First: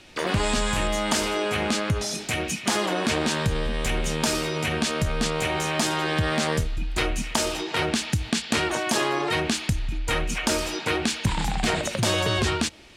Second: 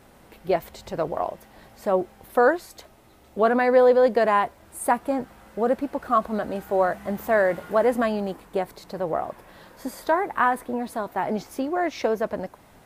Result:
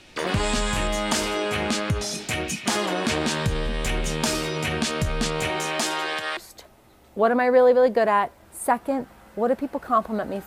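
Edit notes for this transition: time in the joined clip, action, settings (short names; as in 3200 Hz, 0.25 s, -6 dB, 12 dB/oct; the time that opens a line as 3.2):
first
5.49–6.37 HPF 160 Hz -> 870 Hz
6.37 switch to second from 2.57 s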